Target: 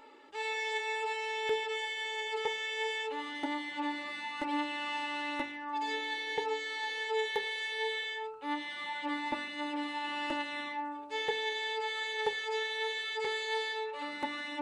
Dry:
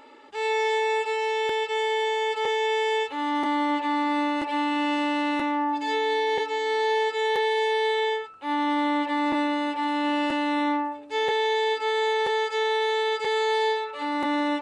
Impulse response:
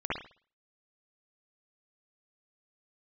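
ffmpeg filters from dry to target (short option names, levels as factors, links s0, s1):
-af "flanger=delay=2.1:depth=8:regen=69:speed=0.2:shape=triangular,bandreject=f=48.76:t=h:w=4,bandreject=f=97.52:t=h:w=4,bandreject=f=146.28:t=h:w=4,bandreject=f=195.04:t=h:w=4,bandreject=f=243.8:t=h:w=4,bandreject=f=292.56:t=h:w=4,bandreject=f=341.32:t=h:w=4,bandreject=f=390.08:t=h:w=4,bandreject=f=438.84:t=h:w=4,bandreject=f=487.6:t=h:w=4,bandreject=f=536.36:t=h:w=4,bandreject=f=585.12:t=h:w=4,bandreject=f=633.88:t=h:w=4,bandreject=f=682.64:t=h:w=4,bandreject=f=731.4:t=h:w=4,bandreject=f=780.16:t=h:w=4,bandreject=f=828.92:t=h:w=4,bandreject=f=877.68:t=h:w=4,bandreject=f=926.44:t=h:w=4,bandreject=f=975.2:t=h:w=4,bandreject=f=1023.96:t=h:w=4,bandreject=f=1072.72:t=h:w=4,bandreject=f=1121.48:t=h:w=4,bandreject=f=1170.24:t=h:w=4,bandreject=f=1219:t=h:w=4,bandreject=f=1267.76:t=h:w=4,bandreject=f=1316.52:t=h:w=4,bandreject=f=1365.28:t=h:w=4,bandreject=f=1414.04:t=h:w=4,bandreject=f=1462.8:t=h:w=4,volume=0.841"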